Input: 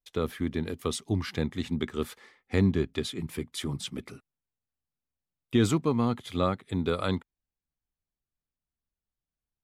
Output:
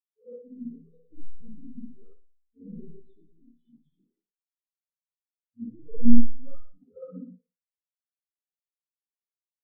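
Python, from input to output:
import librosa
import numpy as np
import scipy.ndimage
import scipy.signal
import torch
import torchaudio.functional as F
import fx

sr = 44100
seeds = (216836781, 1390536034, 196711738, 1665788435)

p1 = fx.spec_trails(x, sr, decay_s=0.32)
p2 = fx.peak_eq(p1, sr, hz=90.0, db=-6.5, octaves=1.3)
p3 = fx.level_steps(p2, sr, step_db=18)
p4 = p2 + (p3 * librosa.db_to_amplitude(-2.0))
p5 = fx.leveller(p4, sr, passes=5)
p6 = fx.chorus_voices(p5, sr, voices=2, hz=0.94, base_ms=14, depth_ms=4.5, mix_pct=55)
p7 = fx.echo_filtered(p6, sr, ms=61, feedback_pct=81, hz=1300.0, wet_db=-14)
p8 = fx.rev_spring(p7, sr, rt60_s=1.2, pass_ms=(55, 59), chirp_ms=50, drr_db=-3.5)
p9 = fx.spectral_expand(p8, sr, expansion=4.0)
y = p9 * librosa.db_to_amplitude(-3.0)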